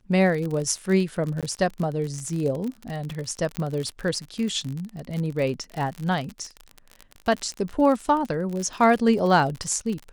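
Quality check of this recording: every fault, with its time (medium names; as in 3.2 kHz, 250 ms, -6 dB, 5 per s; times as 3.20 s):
crackle 45 per s -28 dBFS
1.41–1.43 s: dropout
3.57 s: pop -13 dBFS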